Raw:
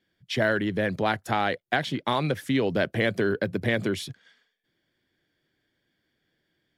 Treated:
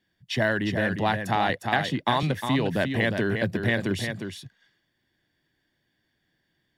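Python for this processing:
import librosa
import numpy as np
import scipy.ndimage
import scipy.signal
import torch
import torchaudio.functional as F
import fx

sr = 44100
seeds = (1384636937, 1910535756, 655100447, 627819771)

y = x + 0.36 * np.pad(x, (int(1.1 * sr / 1000.0), 0))[:len(x)]
y = y + 10.0 ** (-6.5 / 20.0) * np.pad(y, (int(356 * sr / 1000.0), 0))[:len(y)]
y = fx.band_squash(y, sr, depth_pct=40, at=(1.49, 2.23))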